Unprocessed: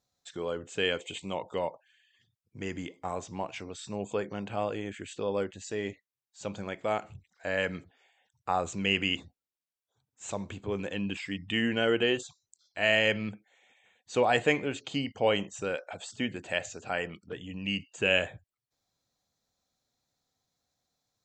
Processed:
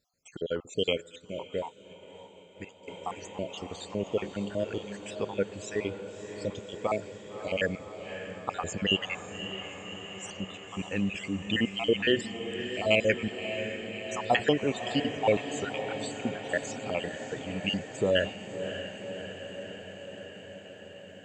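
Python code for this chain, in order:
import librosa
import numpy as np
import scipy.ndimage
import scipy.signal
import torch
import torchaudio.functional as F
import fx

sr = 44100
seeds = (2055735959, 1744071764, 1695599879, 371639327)

y = fx.spec_dropout(x, sr, seeds[0], share_pct=59)
y = fx.echo_diffused(y, sr, ms=590, feedback_pct=73, wet_db=-9.5)
y = fx.upward_expand(y, sr, threshold_db=-47.0, expansion=1.5, at=(1.0, 2.87), fade=0.02)
y = F.gain(torch.from_numpy(y), 4.0).numpy()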